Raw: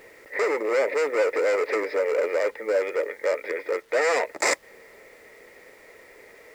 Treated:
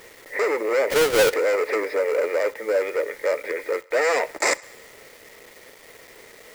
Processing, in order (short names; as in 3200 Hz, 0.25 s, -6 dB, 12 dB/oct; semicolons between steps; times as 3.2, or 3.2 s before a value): 0.9–1.34 half-waves squared off; bit-crush 8-bit; on a send: thinning echo 67 ms, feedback 66%, high-pass 420 Hz, level -23 dB; on the sum: gain +1.5 dB